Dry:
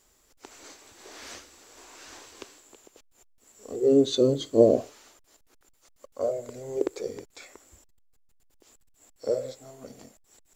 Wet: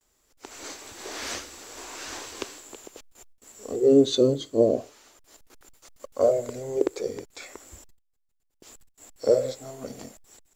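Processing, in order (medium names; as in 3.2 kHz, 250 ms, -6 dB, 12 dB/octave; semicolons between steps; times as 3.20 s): gate with hold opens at -56 dBFS; level rider gain up to 16 dB; trim -6.5 dB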